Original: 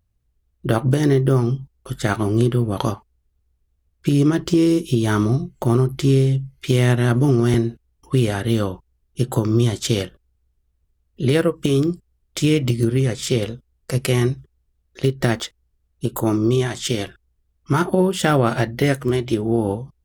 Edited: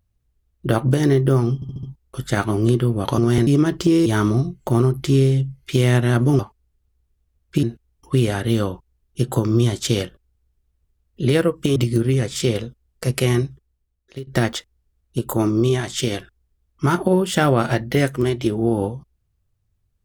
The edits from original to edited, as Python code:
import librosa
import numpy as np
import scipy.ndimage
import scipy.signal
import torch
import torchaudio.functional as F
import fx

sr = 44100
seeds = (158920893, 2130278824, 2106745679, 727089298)

y = fx.edit(x, sr, fx.stutter(start_s=1.55, slice_s=0.07, count=5),
    fx.swap(start_s=2.9, length_s=1.24, other_s=7.34, other_length_s=0.29),
    fx.cut(start_s=4.73, length_s=0.28),
    fx.cut(start_s=11.76, length_s=0.87),
    fx.fade_out_to(start_s=14.19, length_s=0.95, floor_db=-16.5), tone=tone)